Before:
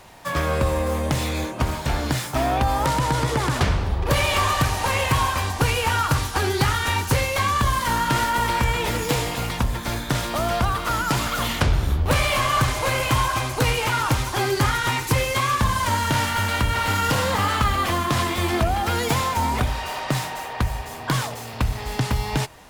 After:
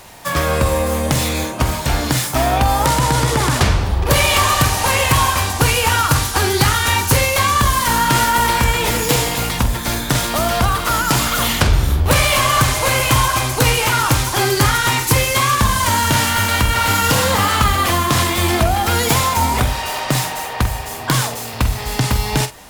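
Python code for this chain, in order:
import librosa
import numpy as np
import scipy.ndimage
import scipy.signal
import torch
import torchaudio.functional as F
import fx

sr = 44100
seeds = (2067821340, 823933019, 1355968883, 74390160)

y = fx.high_shelf(x, sr, hz=5100.0, db=8.0)
y = fx.doubler(y, sr, ms=47.0, db=-11)
y = y * 10.0 ** (5.0 / 20.0)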